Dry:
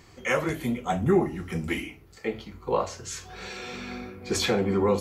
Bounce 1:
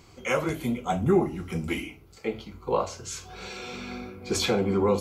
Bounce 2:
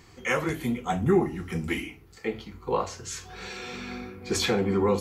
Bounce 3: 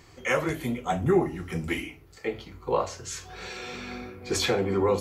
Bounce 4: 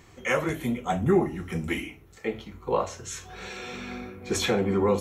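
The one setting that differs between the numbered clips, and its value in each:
notch, frequency: 1800, 600, 210, 4700 Hz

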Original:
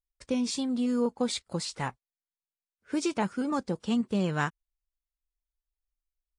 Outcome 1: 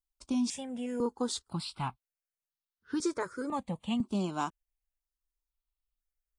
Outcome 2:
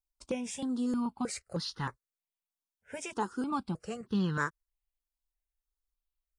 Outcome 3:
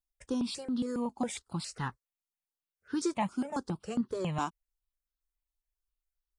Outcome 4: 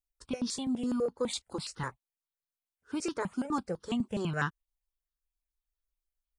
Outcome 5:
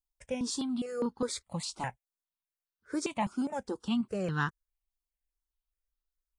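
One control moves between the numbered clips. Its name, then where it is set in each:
step phaser, rate: 2, 3.2, 7.3, 12, 4.9 Hz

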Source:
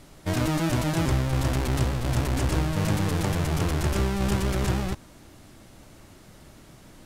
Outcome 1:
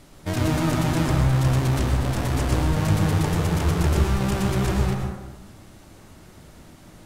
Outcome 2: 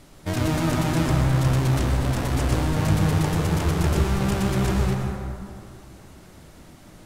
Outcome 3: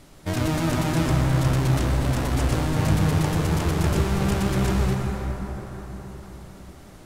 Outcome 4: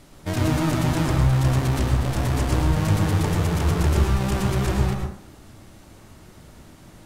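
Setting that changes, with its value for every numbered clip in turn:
plate-style reverb, RT60: 1.1, 2.4, 5.1, 0.51 s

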